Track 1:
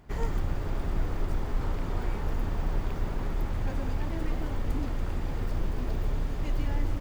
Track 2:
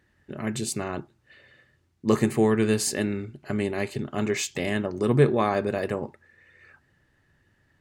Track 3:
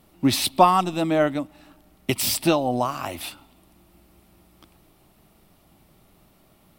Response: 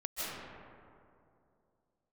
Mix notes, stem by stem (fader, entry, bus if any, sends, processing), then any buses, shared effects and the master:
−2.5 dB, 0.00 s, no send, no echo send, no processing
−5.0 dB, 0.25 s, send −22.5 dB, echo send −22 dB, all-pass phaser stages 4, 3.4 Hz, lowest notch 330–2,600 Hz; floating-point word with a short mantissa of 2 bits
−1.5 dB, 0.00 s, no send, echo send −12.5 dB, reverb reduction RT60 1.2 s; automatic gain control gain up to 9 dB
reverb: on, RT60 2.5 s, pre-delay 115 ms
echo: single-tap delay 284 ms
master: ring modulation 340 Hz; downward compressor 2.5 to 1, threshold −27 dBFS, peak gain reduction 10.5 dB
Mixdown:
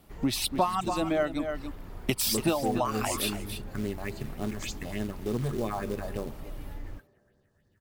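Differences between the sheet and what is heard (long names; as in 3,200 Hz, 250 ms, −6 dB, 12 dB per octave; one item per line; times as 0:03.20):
stem 1 −2.5 dB → −12.0 dB
master: missing ring modulation 340 Hz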